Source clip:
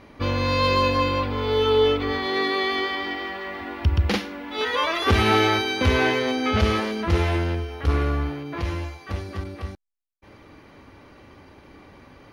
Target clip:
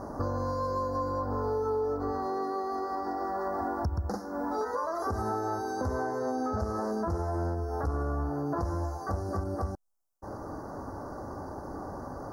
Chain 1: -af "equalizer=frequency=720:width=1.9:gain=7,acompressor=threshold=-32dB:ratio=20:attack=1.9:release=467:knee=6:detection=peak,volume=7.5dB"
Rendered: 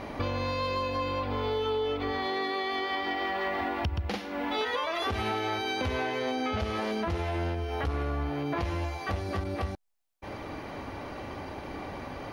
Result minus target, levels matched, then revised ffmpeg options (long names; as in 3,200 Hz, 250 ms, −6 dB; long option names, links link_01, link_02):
2,000 Hz band +9.5 dB
-af "equalizer=frequency=720:width=1.9:gain=7,acompressor=threshold=-32dB:ratio=20:attack=1.9:release=467:knee=6:detection=peak,asuperstop=centerf=2800:order=8:qfactor=0.75,volume=7.5dB"